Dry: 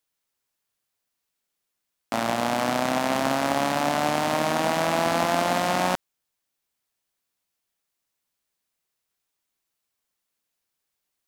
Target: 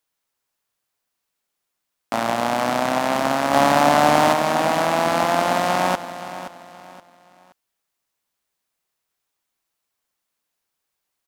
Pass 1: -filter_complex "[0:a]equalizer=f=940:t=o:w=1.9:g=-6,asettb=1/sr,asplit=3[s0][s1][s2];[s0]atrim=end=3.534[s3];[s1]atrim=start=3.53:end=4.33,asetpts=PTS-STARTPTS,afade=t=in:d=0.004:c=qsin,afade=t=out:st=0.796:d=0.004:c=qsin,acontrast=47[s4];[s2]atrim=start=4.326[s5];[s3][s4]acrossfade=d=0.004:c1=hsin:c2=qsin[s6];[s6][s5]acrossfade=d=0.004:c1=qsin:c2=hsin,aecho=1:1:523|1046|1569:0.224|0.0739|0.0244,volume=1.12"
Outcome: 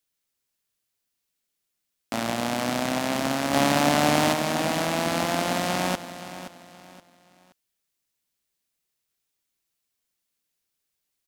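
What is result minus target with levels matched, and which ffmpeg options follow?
1 kHz band -3.0 dB
-filter_complex "[0:a]equalizer=f=940:t=o:w=1.9:g=3.5,asettb=1/sr,asplit=3[s0][s1][s2];[s0]atrim=end=3.534[s3];[s1]atrim=start=3.53:end=4.33,asetpts=PTS-STARTPTS,afade=t=in:d=0.004:c=qsin,afade=t=out:st=0.796:d=0.004:c=qsin,acontrast=47[s4];[s2]atrim=start=4.326[s5];[s3][s4]acrossfade=d=0.004:c1=hsin:c2=qsin[s6];[s6][s5]acrossfade=d=0.004:c1=qsin:c2=hsin,aecho=1:1:523|1046|1569:0.224|0.0739|0.0244,volume=1.12"

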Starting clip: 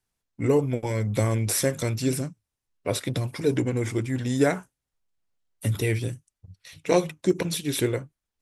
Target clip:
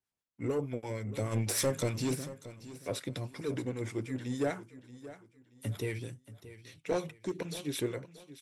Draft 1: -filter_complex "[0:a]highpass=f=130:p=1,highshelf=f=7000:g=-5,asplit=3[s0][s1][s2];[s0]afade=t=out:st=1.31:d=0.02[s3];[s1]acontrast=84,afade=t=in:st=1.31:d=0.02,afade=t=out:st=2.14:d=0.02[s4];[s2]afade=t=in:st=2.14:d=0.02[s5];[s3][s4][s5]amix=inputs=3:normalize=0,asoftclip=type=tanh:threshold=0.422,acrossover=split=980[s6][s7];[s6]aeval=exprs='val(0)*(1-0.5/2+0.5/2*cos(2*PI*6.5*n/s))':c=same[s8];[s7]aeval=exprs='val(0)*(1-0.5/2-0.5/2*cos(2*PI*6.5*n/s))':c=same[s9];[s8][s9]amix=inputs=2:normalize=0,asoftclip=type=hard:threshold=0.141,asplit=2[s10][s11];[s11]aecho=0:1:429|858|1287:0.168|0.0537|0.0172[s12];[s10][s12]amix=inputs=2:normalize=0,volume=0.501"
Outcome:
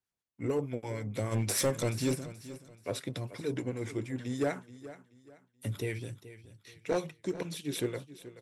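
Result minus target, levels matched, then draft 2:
saturation: distortion -10 dB; echo 200 ms early
-filter_complex "[0:a]highpass=f=130:p=1,highshelf=f=7000:g=-5,asplit=3[s0][s1][s2];[s0]afade=t=out:st=1.31:d=0.02[s3];[s1]acontrast=84,afade=t=in:st=1.31:d=0.02,afade=t=out:st=2.14:d=0.02[s4];[s2]afade=t=in:st=2.14:d=0.02[s5];[s3][s4][s5]amix=inputs=3:normalize=0,asoftclip=type=tanh:threshold=0.178,acrossover=split=980[s6][s7];[s6]aeval=exprs='val(0)*(1-0.5/2+0.5/2*cos(2*PI*6.5*n/s))':c=same[s8];[s7]aeval=exprs='val(0)*(1-0.5/2-0.5/2*cos(2*PI*6.5*n/s))':c=same[s9];[s8][s9]amix=inputs=2:normalize=0,asoftclip=type=hard:threshold=0.141,asplit=2[s10][s11];[s11]aecho=0:1:629|1258|1887:0.168|0.0537|0.0172[s12];[s10][s12]amix=inputs=2:normalize=0,volume=0.501"

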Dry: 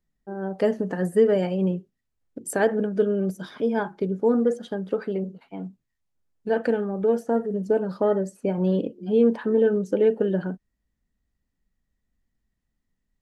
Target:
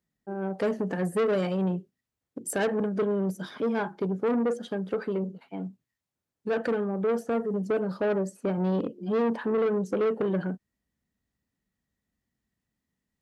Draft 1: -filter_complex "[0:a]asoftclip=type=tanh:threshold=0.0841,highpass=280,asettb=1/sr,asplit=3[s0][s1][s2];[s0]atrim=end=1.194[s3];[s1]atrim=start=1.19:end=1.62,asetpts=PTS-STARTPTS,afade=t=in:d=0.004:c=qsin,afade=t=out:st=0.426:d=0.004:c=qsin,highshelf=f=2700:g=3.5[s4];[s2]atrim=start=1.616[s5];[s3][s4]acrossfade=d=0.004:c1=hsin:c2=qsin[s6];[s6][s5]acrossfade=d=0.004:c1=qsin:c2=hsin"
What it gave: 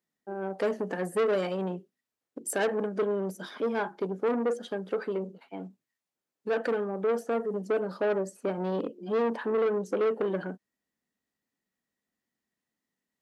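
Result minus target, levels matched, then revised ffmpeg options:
125 Hz band -6.0 dB
-filter_complex "[0:a]asoftclip=type=tanh:threshold=0.0841,highpass=89,asettb=1/sr,asplit=3[s0][s1][s2];[s0]atrim=end=1.194[s3];[s1]atrim=start=1.19:end=1.62,asetpts=PTS-STARTPTS,afade=t=in:d=0.004:c=qsin,afade=t=out:st=0.426:d=0.004:c=qsin,highshelf=f=2700:g=3.5[s4];[s2]atrim=start=1.616[s5];[s3][s4]acrossfade=d=0.004:c1=hsin:c2=qsin[s6];[s6][s5]acrossfade=d=0.004:c1=qsin:c2=hsin"

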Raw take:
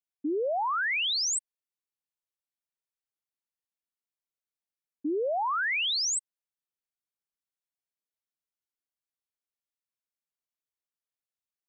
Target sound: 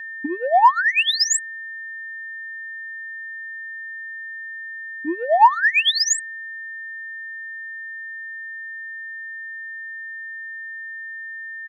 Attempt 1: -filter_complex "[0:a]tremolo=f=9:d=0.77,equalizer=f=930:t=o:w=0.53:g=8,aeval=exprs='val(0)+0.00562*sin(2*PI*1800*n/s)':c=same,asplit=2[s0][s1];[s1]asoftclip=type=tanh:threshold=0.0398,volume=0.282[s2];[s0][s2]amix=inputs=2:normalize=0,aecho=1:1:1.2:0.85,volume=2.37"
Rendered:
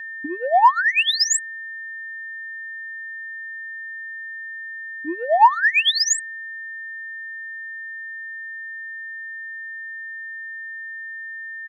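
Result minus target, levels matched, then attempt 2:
250 Hz band -3.0 dB
-filter_complex "[0:a]tremolo=f=9:d=0.77,highpass=f=200:t=q:w=2.2,equalizer=f=930:t=o:w=0.53:g=8,aeval=exprs='val(0)+0.00562*sin(2*PI*1800*n/s)':c=same,asplit=2[s0][s1];[s1]asoftclip=type=tanh:threshold=0.0398,volume=0.282[s2];[s0][s2]amix=inputs=2:normalize=0,aecho=1:1:1.2:0.85,volume=2.37"

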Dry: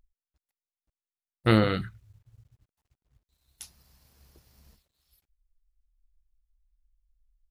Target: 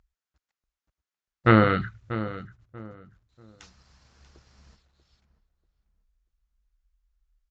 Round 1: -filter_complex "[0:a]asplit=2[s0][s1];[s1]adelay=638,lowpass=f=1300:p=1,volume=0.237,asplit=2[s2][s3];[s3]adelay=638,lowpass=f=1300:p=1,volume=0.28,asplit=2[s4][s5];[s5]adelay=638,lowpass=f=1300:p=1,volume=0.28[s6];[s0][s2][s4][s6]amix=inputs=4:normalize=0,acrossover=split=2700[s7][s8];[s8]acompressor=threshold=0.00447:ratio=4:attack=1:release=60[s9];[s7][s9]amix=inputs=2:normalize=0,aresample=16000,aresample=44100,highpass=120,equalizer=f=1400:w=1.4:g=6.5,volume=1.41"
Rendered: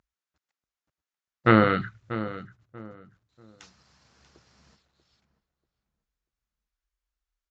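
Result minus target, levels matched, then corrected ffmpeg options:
125 Hz band -3.0 dB
-filter_complex "[0:a]asplit=2[s0][s1];[s1]adelay=638,lowpass=f=1300:p=1,volume=0.237,asplit=2[s2][s3];[s3]adelay=638,lowpass=f=1300:p=1,volume=0.28,asplit=2[s4][s5];[s5]adelay=638,lowpass=f=1300:p=1,volume=0.28[s6];[s0][s2][s4][s6]amix=inputs=4:normalize=0,acrossover=split=2700[s7][s8];[s8]acompressor=threshold=0.00447:ratio=4:attack=1:release=60[s9];[s7][s9]amix=inputs=2:normalize=0,aresample=16000,aresample=44100,highpass=34,equalizer=f=1400:w=1.4:g=6.5,volume=1.41"

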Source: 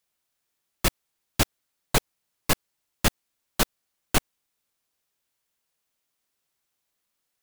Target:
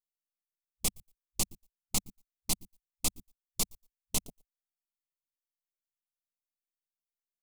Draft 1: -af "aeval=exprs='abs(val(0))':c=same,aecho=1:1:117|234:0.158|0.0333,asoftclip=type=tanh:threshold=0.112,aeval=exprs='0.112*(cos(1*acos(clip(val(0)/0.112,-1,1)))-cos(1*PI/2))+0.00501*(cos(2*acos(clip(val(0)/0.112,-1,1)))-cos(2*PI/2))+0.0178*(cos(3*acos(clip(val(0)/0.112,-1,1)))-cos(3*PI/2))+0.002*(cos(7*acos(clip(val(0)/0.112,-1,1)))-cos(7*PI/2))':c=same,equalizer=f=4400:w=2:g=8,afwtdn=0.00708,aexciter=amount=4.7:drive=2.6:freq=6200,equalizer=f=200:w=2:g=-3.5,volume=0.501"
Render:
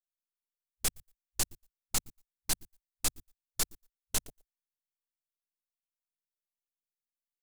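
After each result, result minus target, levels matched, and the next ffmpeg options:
250 Hz band -6.0 dB; 2 kHz band +4.0 dB
-af "aeval=exprs='abs(val(0))':c=same,aecho=1:1:117|234:0.158|0.0333,asoftclip=type=tanh:threshold=0.112,aeval=exprs='0.112*(cos(1*acos(clip(val(0)/0.112,-1,1)))-cos(1*PI/2))+0.00501*(cos(2*acos(clip(val(0)/0.112,-1,1)))-cos(2*PI/2))+0.0178*(cos(3*acos(clip(val(0)/0.112,-1,1)))-cos(3*PI/2))+0.002*(cos(7*acos(clip(val(0)/0.112,-1,1)))-cos(7*PI/2))':c=same,equalizer=f=4400:w=2:g=8,afwtdn=0.00708,aexciter=amount=4.7:drive=2.6:freq=6200,equalizer=f=200:w=2:g=7,volume=0.501"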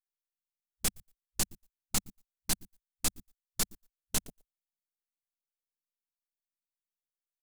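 2 kHz band +3.5 dB
-af "aeval=exprs='abs(val(0))':c=same,aecho=1:1:117|234:0.158|0.0333,asoftclip=type=tanh:threshold=0.112,aeval=exprs='0.112*(cos(1*acos(clip(val(0)/0.112,-1,1)))-cos(1*PI/2))+0.00501*(cos(2*acos(clip(val(0)/0.112,-1,1)))-cos(2*PI/2))+0.0178*(cos(3*acos(clip(val(0)/0.112,-1,1)))-cos(3*PI/2))+0.002*(cos(7*acos(clip(val(0)/0.112,-1,1)))-cos(7*PI/2))':c=same,asuperstop=centerf=1600:order=4:qfactor=1.8,equalizer=f=4400:w=2:g=8,afwtdn=0.00708,aexciter=amount=4.7:drive=2.6:freq=6200,equalizer=f=200:w=2:g=7,volume=0.501"

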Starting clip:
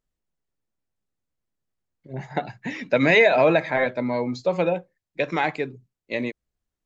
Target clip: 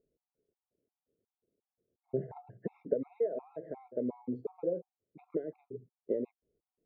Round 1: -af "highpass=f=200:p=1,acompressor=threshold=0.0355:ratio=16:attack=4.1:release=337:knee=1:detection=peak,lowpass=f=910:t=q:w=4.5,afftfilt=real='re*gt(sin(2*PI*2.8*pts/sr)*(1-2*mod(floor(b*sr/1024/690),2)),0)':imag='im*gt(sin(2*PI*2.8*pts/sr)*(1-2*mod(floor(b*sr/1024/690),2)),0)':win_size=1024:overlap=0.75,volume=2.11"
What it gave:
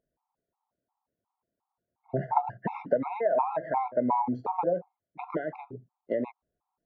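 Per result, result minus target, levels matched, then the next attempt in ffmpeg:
1 kHz band +18.0 dB; compression: peak gain reduction -8.5 dB
-af "highpass=f=200:p=1,acompressor=threshold=0.0355:ratio=16:attack=4.1:release=337:knee=1:detection=peak,lowpass=f=440:t=q:w=4.5,afftfilt=real='re*gt(sin(2*PI*2.8*pts/sr)*(1-2*mod(floor(b*sr/1024/690),2)),0)':imag='im*gt(sin(2*PI*2.8*pts/sr)*(1-2*mod(floor(b*sr/1024/690),2)),0)':win_size=1024:overlap=0.75,volume=2.11"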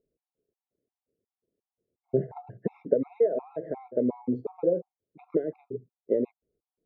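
compression: peak gain reduction -8.5 dB
-af "highpass=f=200:p=1,acompressor=threshold=0.0126:ratio=16:attack=4.1:release=337:knee=1:detection=peak,lowpass=f=440:t=q:w=4.5,afftfilt=real='re*gt(sin(2*PI*2.8*pts/sr)*(1-2*mod(floor(b*sr/1024/690),2)),0)':imag='im*gt(sin(2*PI*2.8*pts/sr)*(1-2*mod(floor(b*sr/1024/690),2)),0)':win_size=1024:overlap=0.75,volume=2.11"

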